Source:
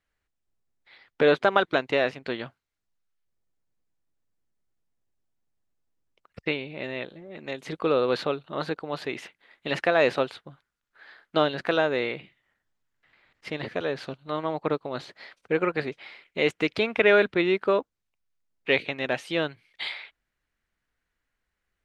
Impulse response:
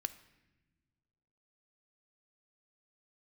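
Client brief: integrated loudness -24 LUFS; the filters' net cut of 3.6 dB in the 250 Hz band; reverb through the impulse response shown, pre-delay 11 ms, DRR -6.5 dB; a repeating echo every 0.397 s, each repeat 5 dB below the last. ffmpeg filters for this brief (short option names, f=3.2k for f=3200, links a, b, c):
-filter_complex "[0:a]equalizer=f=250:t=o:g=-5.5,aecho=1:1:397|794|1191|1588|1985|2382|2779:0.562|0.315|0.176|0.0988|0.0553|0.031|0.0173,asplit=2[a][b];[1:a]atrim=start_sample=2205,adelay=11[c];[b][c]afir=irnorm=-1:irlink=0,volume=7dB[d];[a][d]amix=inputs=2:normalize=0,volume=-4dB"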